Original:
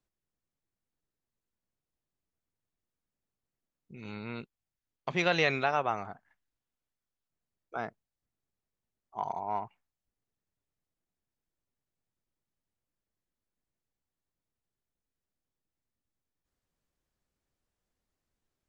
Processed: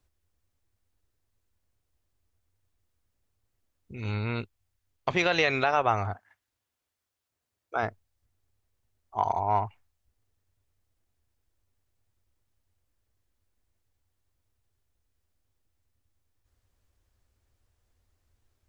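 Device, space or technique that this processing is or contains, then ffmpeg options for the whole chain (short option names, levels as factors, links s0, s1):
car stereo with a boomy subwoofer: -filter_complex "[0:a]asettb=1/sr,asplit=3[s0][s1][s2];[s0]atrim=end=6.134[s3];[s1]atrim=start=6.13:end=7.83,asetpts=PTS-STARTPTS,afade=t=in:d=0.004:c=qsin,afade=t=out:st=1.696:d=0.004:c=qsin,highpass=f=280:p=1[s4];[s2]atrim=start=7.826[s5];[s3][s4]acrossfade=d=0.004:c1=hsin:c2=qsin[s6];[s6][s5]acrossfade=d=0.004:c1=qsin:c2=hsin,lowshelf=f=120:t=q:w=3:g=7,alimiter=limit=0.106:level=0:latency=1:release=171,volume=2.51"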